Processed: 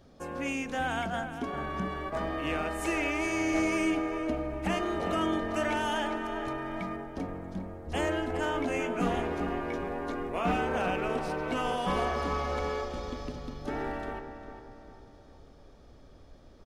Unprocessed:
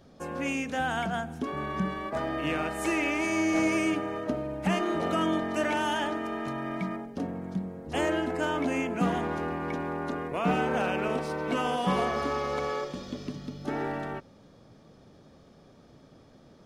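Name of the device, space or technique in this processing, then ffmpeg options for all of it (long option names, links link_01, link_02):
low shelf boost with a cut just above: -filter_complex "[0:a]asettb=1/sr,asplit=3[link_01][link_02][link_03];[link_01]atrim=end=8.664[link_04];[link_02]atrim=start=8.66:end=10.57,asetpts=PTS-STARTPTS,afade=type=in:duration=0.004:curve=qsin,afade=type=out:start_time=1.906:duration=0.004:curve=qsin,asplit=2[link_05][link_06];[link_06]adelay=17,volume=-5dB[link_07];[link_05][link_07]amix=inputs=2:normalize=0,atrim=end_sample=84231[link_08];[link_03]atrim=start=10.566[link_09];[link_04][link_08]acrossfade=duration=0.004:curve1=hsin:curve2=qsin[link_10];[link_10][link_09]acrossfade=duration=0.004:curve1=qsin:curve2=hsin,asplit=2[link_11][link_12];[link_12]adelay=401,lowpass=frequency=2100:poles=1,volume=-8.5dB,asplit=2[link_13][link_14];[link_14]adelay=401,lowpass=frequency=2100:poles=1,volume=0.48,asplit=2[link_15][link_16];[link_16]adelay=401,lowpass=frequency=2100:poles=1,volume=0.48,asplit=2[link_17][link_18];[link_18]adelay=401,lowpass=frequency=2100:poles=1,volume=0.48,asplit=2[link_19][link_20];[link_20]adelay=401,lowpass=frequency=2100:poles=1,volume=0.48[link_21];[link_11][link_13][link_15][link_17][link_19][link_21]amix=inputs=6:normalize=0,asubboost=boost=4.5:cutoff=61,lowshelf=frequency=94:gain=6,equalizer=frequency=170:width_type=o:width=0.68:gain=-4,volume=-2dB"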